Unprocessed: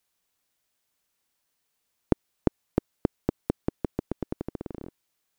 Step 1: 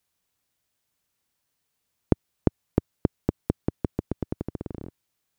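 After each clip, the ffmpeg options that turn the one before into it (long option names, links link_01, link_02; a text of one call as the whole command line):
ffmpeg -i in.wav -af "equalizer=frequency=100:width_type=o:width=2:gain=8,volume=-1dB" out.wav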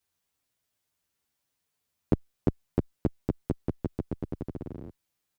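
ffmpeg -i in.wav -filter_complex "[0:a]asplit=2[link_01][link_02];[link_02]adelay=9.6,afreqshift=-1[link_03];[link_01][link_03]amix=inputs=2:normalize=1" out.wav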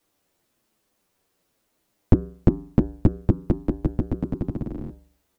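ffmpeg -i in.wav -af "equalizer=frequency=760:width=0.79:gain=12,bandreject=frequency=111.1:width_type=h:width=4,bandreject=frequency=222.2:width_type=h:width=4,bandreject=frequency=333.3:width_type=h:width=4,bandreject=frequency=444.4:width_type=h:width=4,bandreject=frequency=555.5:width_type=h:width=4,bandreject=frequency=666.6:width_type=h:width=4,bandreject=frequency=777.7:width_type=h:width=4,bandreject=frequency=888.8:width_type=h:width=4,bandreject=frequency=999.9:width_type=h:width=4,bandreject=frequency=1111:width_type=h:width=4,bandreject=frequency=1222.1:width_type=h:width=4,bandreject=frequency=1333.2:width_type=h:width=4,bandreject=frequency=1444.3:width_type=h:width=4,bandreject=frequency=1555.4:width_type=h:width=4,bandreject=frequency=1666.5:width_type=h:width=4,bandreject=frequency=1777.6:width_type=h:width=4,bandreject=frequency=1888.7:width_type=h:width=4,bandreject=frequency=1999.8:width_type=h:width=4,bandreject=frequency=2110.9:width_type=h:width=4,afreqshift=-400,volume=7dB" out.wav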